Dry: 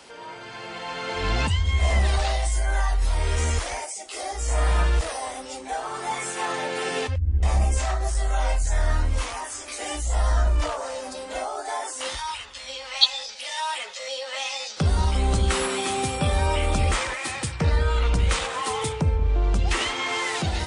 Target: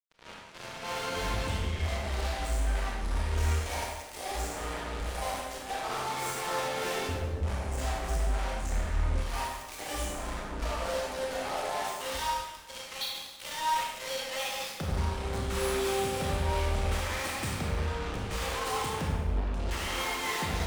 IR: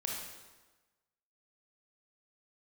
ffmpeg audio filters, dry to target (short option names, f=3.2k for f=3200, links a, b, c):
-filter_complex "[0:a]highshelf=f=2.6k:g=-6.5,acompressor=threshold=-27dB:ratio=5,acrusher=bits=4:mix=0:aa=0.5,tremolo=f=3.2:d=0.7,asoftclip=type=tanh:threshold=-35.5dB[a];[1:a]atrim=start_sample=2205[b];[a][b]afir=irnorm=-1:irlink=0,volume=7.5dB"